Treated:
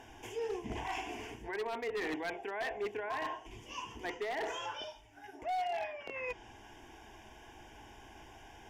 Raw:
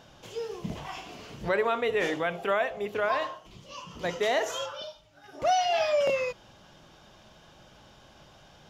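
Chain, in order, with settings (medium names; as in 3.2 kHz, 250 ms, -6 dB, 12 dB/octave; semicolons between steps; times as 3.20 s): low-pass that closes with the level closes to 2.5 kHz, closed at -23.5 dBFS; reverse; compression 16:1, threshold -34 dBFS, peak gain reduction 14.5 dB; reverse; static phaser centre 840 Hz, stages 8; wavefolder -35 dBFS; trim +4.5 dB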